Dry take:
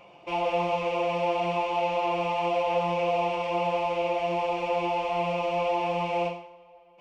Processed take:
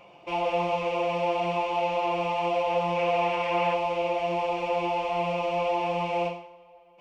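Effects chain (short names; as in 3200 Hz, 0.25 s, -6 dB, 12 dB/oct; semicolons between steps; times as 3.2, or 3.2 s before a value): 2.94–3.73 bell 1700 Hz +5 dB -> +11 dB 1.1 oct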